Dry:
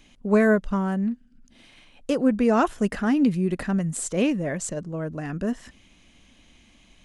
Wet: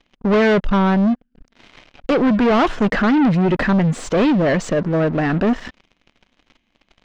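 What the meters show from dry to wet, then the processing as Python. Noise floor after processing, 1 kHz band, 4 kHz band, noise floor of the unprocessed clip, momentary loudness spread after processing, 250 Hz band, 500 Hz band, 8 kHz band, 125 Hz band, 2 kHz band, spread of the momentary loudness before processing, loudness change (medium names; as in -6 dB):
-69 dBFS, +9.0 dB, +10.5 dB, -57 dBFS, 5 LU, +6.5 dB, +7.0 dB, -4.0 dB, +9.0 dB, +8.5 dB, 11 LU, +7.0 dB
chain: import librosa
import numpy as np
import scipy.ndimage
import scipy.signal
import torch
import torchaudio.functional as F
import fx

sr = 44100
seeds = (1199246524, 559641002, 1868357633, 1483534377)

y = fx.peak_eq(x, sr, hz=71.0, db=-8.5, octaves=2.5)
y = fx.leveller(y, sr, passes=5)
y = fx.air_absorb(y, sr, metres=200.0)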